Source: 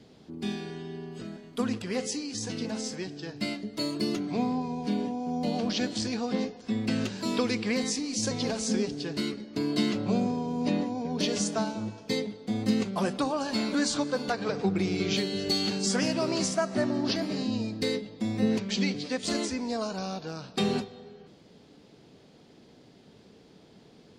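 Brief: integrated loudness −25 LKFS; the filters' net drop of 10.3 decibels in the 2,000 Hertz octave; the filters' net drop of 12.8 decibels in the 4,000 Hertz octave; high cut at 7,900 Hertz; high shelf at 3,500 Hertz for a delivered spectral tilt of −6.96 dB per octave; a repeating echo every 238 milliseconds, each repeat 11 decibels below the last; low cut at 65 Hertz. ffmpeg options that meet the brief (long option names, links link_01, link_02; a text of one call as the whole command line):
ffmpeg -i in.wav -af "highpass=65,lowpass=7900,equalizer=frequency=2000:width_type=o:gain=-9,highshelf=frequency=3500:gain=-8.5,equalizer=frequency=4000:width_type=o:gain=-7,aecho=1:1:238|476|714:0.282|0.0789|0.0221,volume=6dB" out.wav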